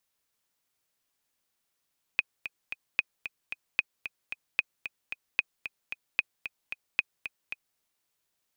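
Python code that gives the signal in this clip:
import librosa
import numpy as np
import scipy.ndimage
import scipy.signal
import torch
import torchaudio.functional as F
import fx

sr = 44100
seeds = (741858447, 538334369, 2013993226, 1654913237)

y = fx.click_track(sr, bpm=225, beats=3, bars=7, hz=2500.0, accent_db=11.5, level_db=-10.0)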